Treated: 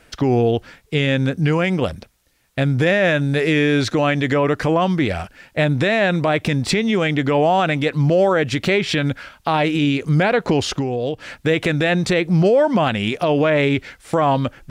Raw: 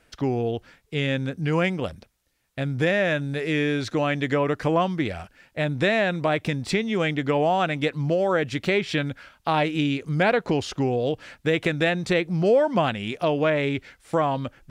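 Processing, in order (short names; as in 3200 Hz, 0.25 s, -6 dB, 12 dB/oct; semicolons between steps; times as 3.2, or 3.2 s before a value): 10.72–11.36 compressor 6:1, threshold -29 dBFS, peak gain reduction 9.5 dB; maximiser +17 dB; gain -7.5 dB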